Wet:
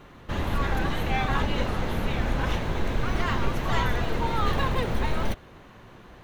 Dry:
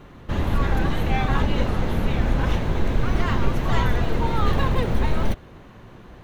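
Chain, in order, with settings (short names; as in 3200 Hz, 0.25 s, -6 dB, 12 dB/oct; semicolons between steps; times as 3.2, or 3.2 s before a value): low shelf 490 Hz -6 dB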